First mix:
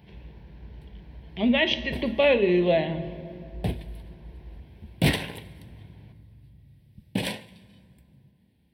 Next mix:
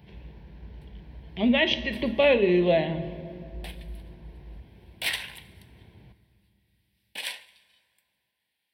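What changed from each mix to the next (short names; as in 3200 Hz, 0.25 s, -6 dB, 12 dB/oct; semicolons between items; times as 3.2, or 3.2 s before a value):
background: add HPF 1300 Hz 12 dB/oct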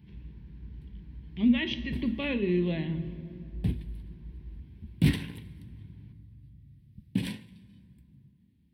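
background: remove HPF 1300 Hz 12 dB/oct; master: add EQ curve 280 Hz 0 dB, 650 Hz -22 dB, 1100 Hz -9 dB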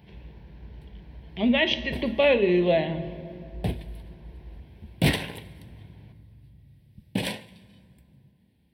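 master: remove EQ curve 280 Hz 0 dB, 650 Hz -22 dB, 1100 Hz -9 dB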